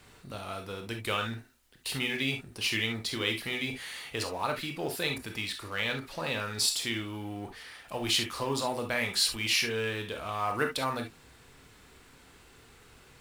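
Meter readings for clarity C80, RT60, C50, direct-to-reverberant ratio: 38.5 dB, non-exponential decay, 8.5 dB, 4.0 dB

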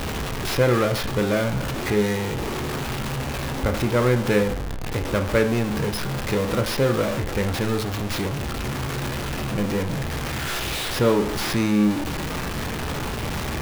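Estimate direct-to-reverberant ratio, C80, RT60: 5.5 dB, 16.5 dB, 0.45 s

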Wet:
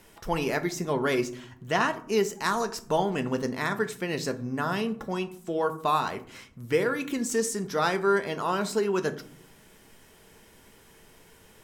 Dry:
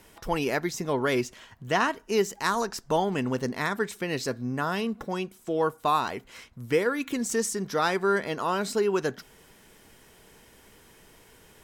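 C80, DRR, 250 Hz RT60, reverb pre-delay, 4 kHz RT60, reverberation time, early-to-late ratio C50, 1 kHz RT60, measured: 19.5 dB, 9.0 dB, 1.0 s, 5 ms, 0.30 s, 0.60 s, 16.0 dB, 0.50 s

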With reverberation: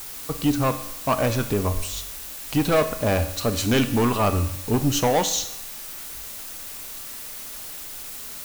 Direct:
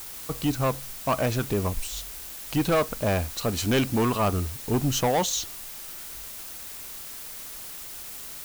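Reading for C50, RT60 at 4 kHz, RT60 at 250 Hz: 12.0 dB, 0.80 s, 0.80 s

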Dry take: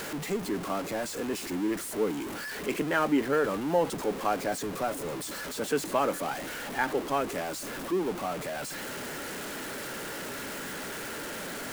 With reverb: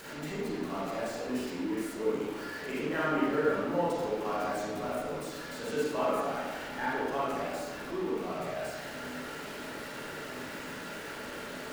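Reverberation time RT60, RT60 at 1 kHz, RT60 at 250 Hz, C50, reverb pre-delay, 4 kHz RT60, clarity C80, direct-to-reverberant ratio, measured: 1.3 s, 1.3 s, 1.3 s, −3.0 dB, 28 ms, 0.85 s, 1.0 dB, −8.5 dB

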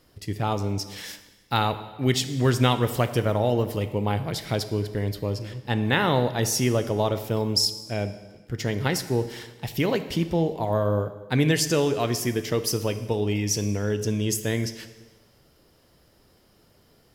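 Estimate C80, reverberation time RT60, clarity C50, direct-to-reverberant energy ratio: 13.5 dB, 1.3 s, 12.0 dB, 10.5 dB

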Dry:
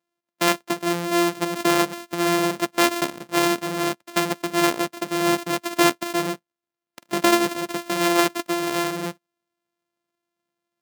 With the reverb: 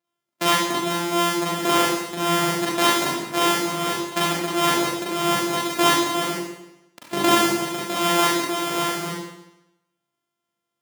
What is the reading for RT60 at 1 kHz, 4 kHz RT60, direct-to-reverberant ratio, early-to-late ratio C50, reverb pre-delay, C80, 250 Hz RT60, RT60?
0.90 s, 0.90 s, −5.5 dB, −0.5 dB, 37 ms, 2.0 dB, 0.90 s, 0.90 s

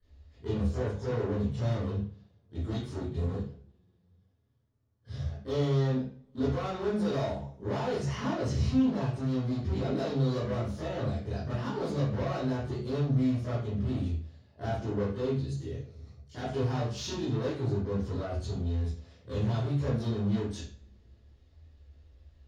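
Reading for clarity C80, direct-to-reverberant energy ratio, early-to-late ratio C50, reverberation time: 6.5 dB, −12.5 dB, 1.0 dB, 0.45 s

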